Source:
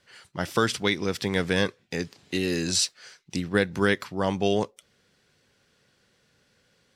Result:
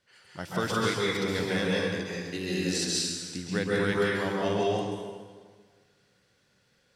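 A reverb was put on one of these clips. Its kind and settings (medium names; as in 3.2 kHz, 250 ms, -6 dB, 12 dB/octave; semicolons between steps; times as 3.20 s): plate-style reverb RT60 1.6 s, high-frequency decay 0.85×, pre-delay 120 ms, DRR -5.5 dB; trim -8.5 dB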